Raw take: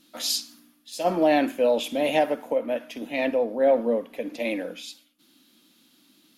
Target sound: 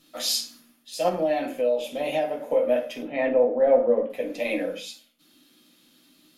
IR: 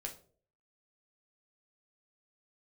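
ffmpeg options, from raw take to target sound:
-filter_complex "[0:a]asettb=1/sr,asplit=3[link_01][link_02][link_03];[link_01]atrim=end=3.024[link_04];[link_02]atrim=start=3.02:end=4.1,asetpts=PTS-STARTPTS,afade=type=in:duration=0.004:curve=qsin,afade=type=out:start_time=1.076:duration=0.004:curve=qsin,lowpass=1900[link_05];[link_03]atrim=start=4.096[link_06];[link_04][link_05]acrossfade=duration=0.004:curve1=hsin:curve2=qsin[link_07];[link_07][link_06]acrossfade=duration=0.004:curve1=qsin:curve2=hsin[link_08];[1:a]atrim=start_sample=2205,afade=type=out:start_time=0.22:duration=0.01,atrim=end_sample=10143,asetrate=48510,aresample=44100[link_09];[link_08][link_09]afir=irnorm=-1:irlink=0,asettb=1/sr,asplit=3[link_10][link_11][link_12];[link_10]atrim=end=1.094[link_13];[link_11]atrim=start=1.09:end=2.51,asetpts=PTS-STARTPTS,afade=type=in:duration=0.004:curve=qsin,afade=type=out:start_time=1.416:duration=0.004:curve=qsin,acompressor=threshold=-33dB:ratio=2[link_14];[link_12]atrim=start=2.506[link_15];[link_13][link_14]acrossfade=duration=0.004:curve1=hsin:curve2=qsin[link_16];[link_16][link_15]acrossfade=duration=0.004:curve1=qsin:curve2=hsin,volume=4.5dB"

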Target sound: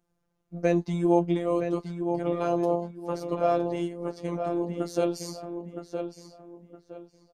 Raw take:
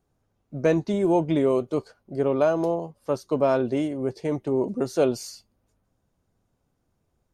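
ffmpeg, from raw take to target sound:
ffmpeg -i in.wav -filter_complex "[0:a]asplit=2[link_01][link_02];[link_02]adelay=965,lowpass=frequency=3200:poles=1,volume=-7dB,asplit=2[link_03][link_04];[link_04]adelay=965,lowpass=frequency=3200:poles=1,volume=0.29,asplit=2[link_05][link_06];[link_06]adelay=965,lowpass=frequency=3200:poles=1,volume=0.29,asplit=2[link_07][link_08];[link_08]adelay=965,lowpass=frequency=3200:poles=1,volume=0.29[link_09];[link_01][link_03][link_05][link_07][link_09]amix=inputs=5:normalize=0,afftfilt=real='hypot(re,im)*cos(PI*b)':imag='0':win_size=1024:overlap=0.75" out.wav

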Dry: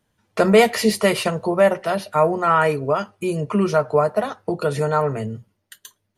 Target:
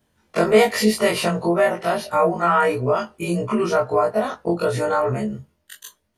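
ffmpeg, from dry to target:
ffmpeg -i in.wav -filter_complex "[0:a]afftfilt=real='re':imag='-im':win_size=2048:overlap=0.75,asplit=2[link_01][link_02];[link_02]acompressor=threshold=-27dB:ratio=6,volume=3dB[link_03];[link_01][link_03]amix=inputs=2:normalize=0" out.wav

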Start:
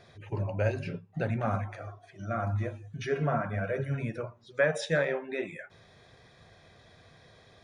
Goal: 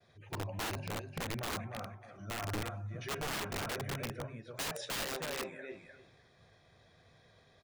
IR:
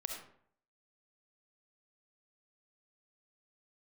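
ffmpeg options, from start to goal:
-af "aecho=1:1:302|604|906:0.501|0.0852|0.0145,agate=range=-33dB:threshold=-54dB:ratio=3:detection=peak,aeval=exprs='(mod(16.8*val(0)+1,2)-1)/16.8':channel_layout=same,volume=-7.5dB"

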